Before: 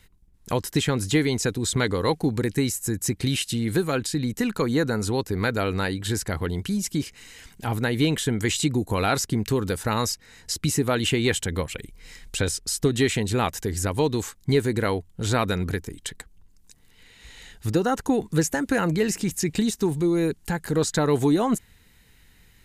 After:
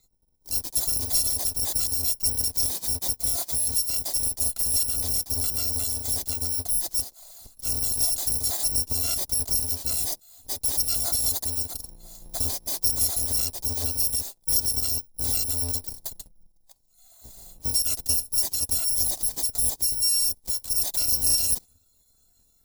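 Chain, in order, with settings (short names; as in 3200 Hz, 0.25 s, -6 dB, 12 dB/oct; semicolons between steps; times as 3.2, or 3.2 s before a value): FFT order left unsorted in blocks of 256 samples; spectral noise reduction 12 dB; in parallel at +2 dB: limiter -18.5 dBFS, peak gain reduction 8 dB; on the sum: band shelf 1900 Hz -14 dB; gain -6.5 dB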